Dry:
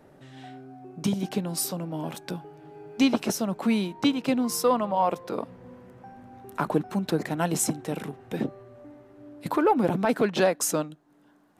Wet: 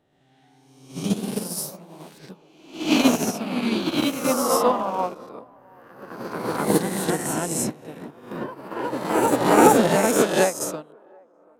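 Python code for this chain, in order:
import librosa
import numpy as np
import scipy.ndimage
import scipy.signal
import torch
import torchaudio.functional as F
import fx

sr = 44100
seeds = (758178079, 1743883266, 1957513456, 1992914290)

p1 = fx.spec_swells(x, sr, rise_s=1.34)
p2 = p1 + fx.echo_wet_bandpass(p1, sr, ms=732, feedback_pct=39, hz=660.0, wet_db=-12, dry=0)
p3 = fx.echo_pitch(p2, sr, ms=119, semitones=1, count=3, db_per_echo=-3.0)
p4 = fx.upward_expand(p3, sr, threshold_db=-29.0, expansion=2.5)
y = p4 * librosa.db_to_amplitude(4.5)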